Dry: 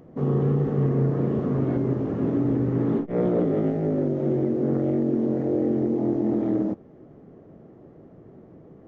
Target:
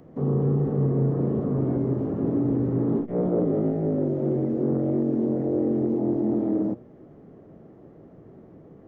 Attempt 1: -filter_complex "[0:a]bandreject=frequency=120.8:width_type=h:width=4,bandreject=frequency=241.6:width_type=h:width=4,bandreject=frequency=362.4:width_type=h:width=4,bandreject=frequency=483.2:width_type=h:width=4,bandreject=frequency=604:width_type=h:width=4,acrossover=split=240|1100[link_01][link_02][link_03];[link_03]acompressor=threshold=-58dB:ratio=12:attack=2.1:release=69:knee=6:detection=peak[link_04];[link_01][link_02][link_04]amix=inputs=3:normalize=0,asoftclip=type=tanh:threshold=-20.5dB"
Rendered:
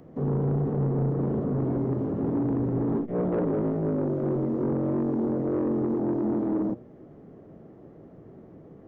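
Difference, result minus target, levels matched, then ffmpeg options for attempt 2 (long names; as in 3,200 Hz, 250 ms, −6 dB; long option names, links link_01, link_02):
soft clipping: distortion +17 dB
-filter_complex "[0:a]bandreject=frequency=120.8:width_type=h:width=4,bandreject=frequency=241.6:width_type=h:width=4,bandreject=frequency=362.4:width_type=h:width=4,bandreject=frequency=483.2:width_type=h:width=4,bandreject=frequency=604:width_type=h:width=4,acrossover=split=240|1100[link_01][link_02][link_03];[link_03]acompressor=threshold=-58dB:ratio=12:attack=2.1:release=69:knee=6:detection=peak[link_04];[link_01][link_02][link_04]amix=inputs=3:normalize=0,asoftclip=type=tanh:threshold=-9.5dB"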